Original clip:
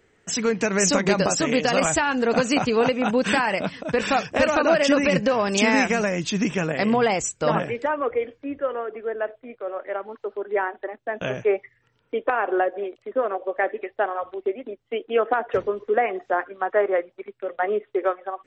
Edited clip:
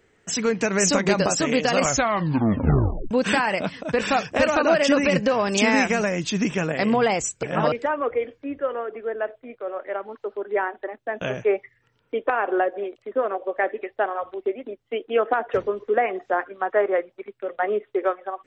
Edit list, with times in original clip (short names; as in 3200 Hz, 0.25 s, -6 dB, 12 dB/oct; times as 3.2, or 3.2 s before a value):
1.78 tape stop 1.33 s
7.43–7.72 reverse